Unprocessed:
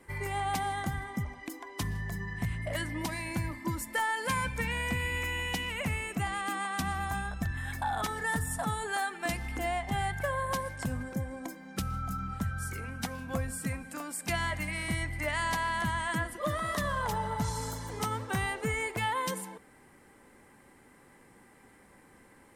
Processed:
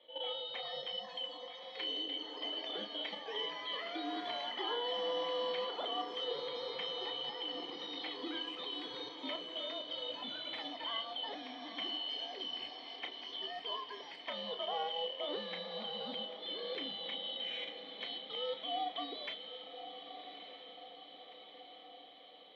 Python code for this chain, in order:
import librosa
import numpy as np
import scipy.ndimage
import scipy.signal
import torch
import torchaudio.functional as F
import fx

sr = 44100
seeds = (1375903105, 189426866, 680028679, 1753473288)

y = fx.band_shuffle(x, sr, order='2413')
y = fx.level_steps(y, sr, step_db=12)
y = fx.doubler(y, sr, ms=34.0, db=-8.5)
y = fx.echo_diffused(y, sr, ms=1175, feedback_pct=61, wet_db=-10)
y = fx.echo_pitch(y, sr, ms=483, semitones=6, count=2, db_per_echo=-6.0)
y = fx.cabinet(y, sr, low_hz=310.0, low_slope=24, high_hz=2500.0, hz=(340.0, 590.0, 900.0, 1400.0, 2100.0), db=(-5, -4, -3, -9, 7))
y = y * 10.0 ** (3.0 / 20.0)